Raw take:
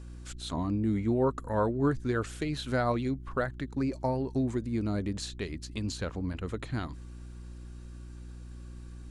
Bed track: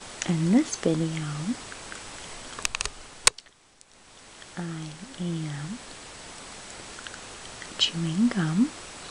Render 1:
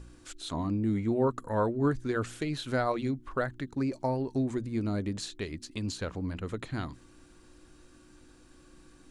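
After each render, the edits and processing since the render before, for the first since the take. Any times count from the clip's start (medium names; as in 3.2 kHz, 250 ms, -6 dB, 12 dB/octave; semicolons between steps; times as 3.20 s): de-hum 60 Hz, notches 4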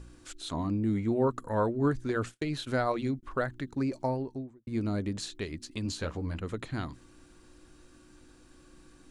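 2.09–3.23 s: gate -43 dBFS, range -39 dB; 4.00–4.67 s: studio fade out; 5.84–6.40 s: doubling 13 ms -6 dB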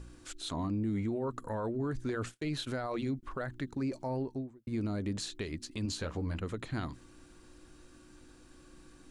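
peak limiter -27 dBFS, peak gain reduction 11 dB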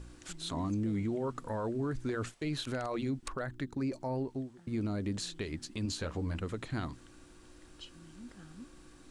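add bed track -27 dB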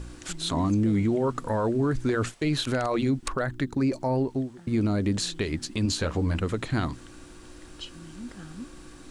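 trim +9.5 dB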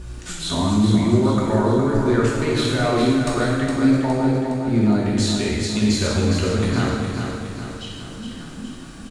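feedback delay 413 ms, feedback 52%, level -6 dB; gated-style reverb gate 420 ms falling, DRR -4.5 dB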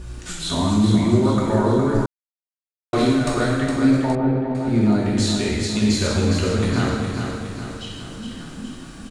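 2.06–2.93 s: mute; 4.15–4.55 s: distance through air 460 m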